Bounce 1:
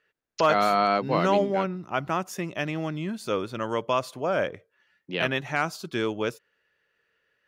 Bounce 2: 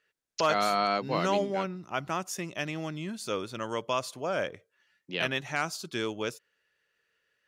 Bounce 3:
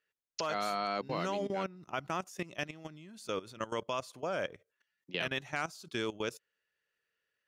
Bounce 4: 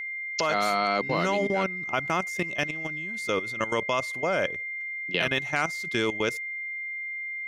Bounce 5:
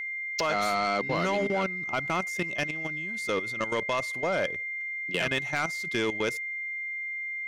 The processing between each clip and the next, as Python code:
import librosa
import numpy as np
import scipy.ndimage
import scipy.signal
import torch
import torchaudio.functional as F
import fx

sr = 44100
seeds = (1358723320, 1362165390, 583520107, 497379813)

y1 = fx.peak_eq(x, sr, hz=7300.0, db=9.0, octaves=2.2)
y1 = y1 * 10.0 ** (-5.5 / 20.0)
y2 = fx.level_steps(y1, sr, step_db=17)
y3 = y2 + 10.0 ** (-40.0 / 20.0) * np.sin(2.0 * np.pi * 2100.0 * np.arange(len(y2)) / sr)
y3 = y3 * 10.0 ** (8.5 / 20.0)
y4 = 10.0 ** (-19.0 / 20.0) * np.tanh(y3 / 10.0 ** (-19.0 / 20.0))